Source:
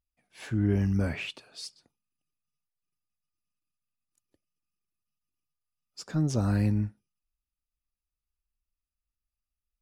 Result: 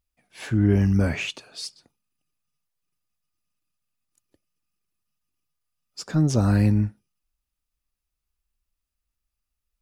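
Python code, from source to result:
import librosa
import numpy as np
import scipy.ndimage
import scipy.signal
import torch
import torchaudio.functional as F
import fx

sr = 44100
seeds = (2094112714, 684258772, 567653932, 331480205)

y = fx.peak_eq(x, sr, hz=6500.0, db=fx.line((1.12, 15.0), (1.52, 4.5)), octaves=0.29, at=(1.12, 1.52), fade=0.02)
y = F.gain(torch.from_numpy(y), 6.5).numpy()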